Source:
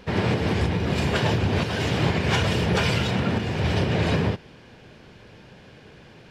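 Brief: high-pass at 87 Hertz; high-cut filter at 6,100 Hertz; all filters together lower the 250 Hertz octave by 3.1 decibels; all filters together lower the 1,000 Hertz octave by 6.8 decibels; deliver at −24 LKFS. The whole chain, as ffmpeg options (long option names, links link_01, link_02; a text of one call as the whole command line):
ffmpeg -i in.wav -af "highpass=87,lowpass=6100,equalizer=frequency=250:width_type=o:gain=-4,equalizer=frequency=1000:width_type=o:gain=-9,volume=2dB" out.wav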